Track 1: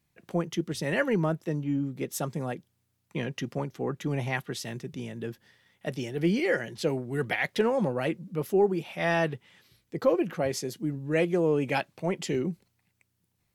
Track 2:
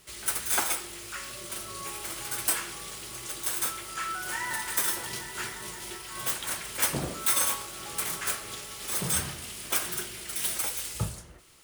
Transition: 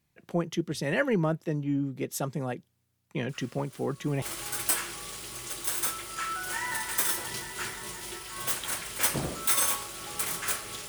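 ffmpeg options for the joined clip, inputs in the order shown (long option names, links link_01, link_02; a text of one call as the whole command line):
ffmpeg -i cue0.wav -i cue1.wav -filter_complex "[1:a]asplit=2[link_01][link_02];[0:a]apad=whole_dur=10.88,atrim=end=10.88,atrim=end=4.222[link_03];[link_02]atrim=start=2.008:end=8.67[link_04];[link_01]atrim=start=1.08:end=2.01,asetpts=PTS-STARTPTS,volume=-16dB,afade=type=in:duration=0.004:curve=hsin,afade=type=out:start_time=0.926:duration=0.004:curve=hsin,adelay=145089S[link_05];[link_03][link_04]acrossfade=duration=0.004:curve1=hsin:curve2=hsin[link_06];[link_06][link_05]amix=inputs=2:normalize=0" out.wav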